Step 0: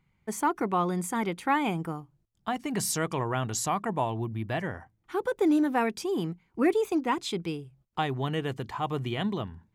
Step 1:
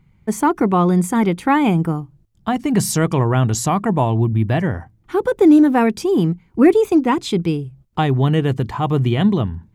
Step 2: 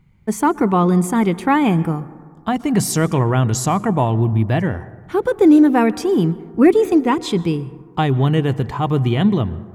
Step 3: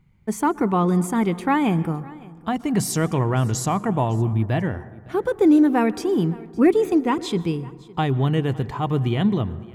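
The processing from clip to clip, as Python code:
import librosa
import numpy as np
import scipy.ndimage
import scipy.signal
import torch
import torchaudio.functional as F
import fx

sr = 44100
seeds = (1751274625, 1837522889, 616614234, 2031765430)

y1 = fx.low_shelf(x, sr, hz=360.0, db=11.0)
y1 = y1 * librosa.db_to_amplitude(7.0)
y2 = fx.rev_plate(y1, sr, seeds[0], rt60_s=1.8, hf_ratio=0.3, predelay_ms=105, drr_db=17.5)
y3 = y2 + 10.0 ** (-22.5 / 20.0) * np.pad(y2, (int(561 * sr / 1000.0), 0))[:len(y2)]
y3 = y3 * librosa.db_to_amplitude(-4.5)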